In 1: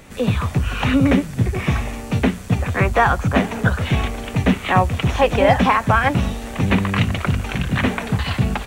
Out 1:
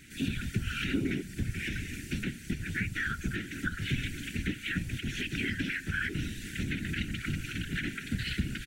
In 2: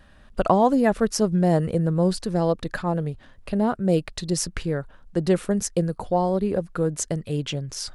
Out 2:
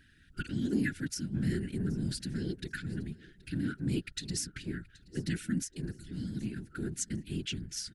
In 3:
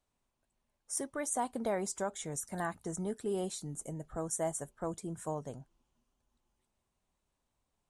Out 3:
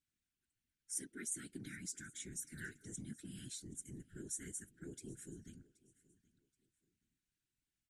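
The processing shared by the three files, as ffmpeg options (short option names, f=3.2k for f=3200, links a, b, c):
-filter_complex "[0:a]afftfilt=real='re*(1-between(b*sr/4096,340,1400))':imag='im*(1-between(b*sr/4096,340,1400))':win_size=4096:overlap=0.75,lowshelf=f=300:g=-6.5,alimiter=limit=-17.5dB:level=0:latency=1:release=284,acontrast=37,afftfilt=real='hypot(re,im)*cos(2*PI*random(0))':imag='hypot(re,im)*sin(2*PI*random(1))':win_size=512:overlap=0.75,asplit=2[a][b];[b]aecho=0:1:776|1552:0.0794|0.0222[c];[a][c]amix=inputs=2:normalize=0,volume=-4.5dB"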